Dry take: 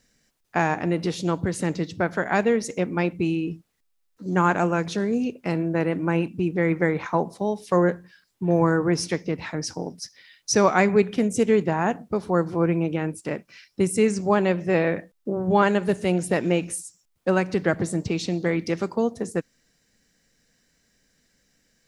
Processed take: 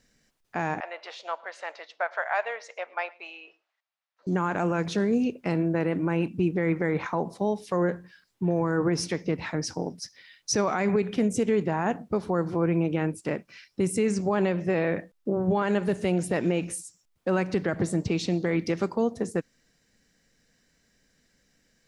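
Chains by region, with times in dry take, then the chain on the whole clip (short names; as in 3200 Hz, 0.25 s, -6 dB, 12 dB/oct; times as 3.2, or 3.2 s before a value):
0.8–4.27 Chebyshev high-pass 620 Hz, order 4 + air absorption 160 m + echo 0.11 s -24 dB
whole clip: high shelf 6300 Hz -5.5 dB; limiter -15.5 dBFS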